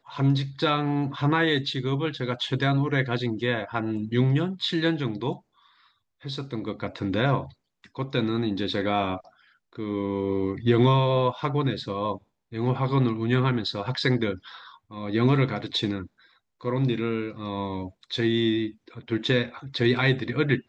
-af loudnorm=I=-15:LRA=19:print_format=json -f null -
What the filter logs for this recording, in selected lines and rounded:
"input_i" : "-25.9",
"input_tp" : "-8.2",
"input_lra" : "3.4",
"input_thresh" : "-36.4",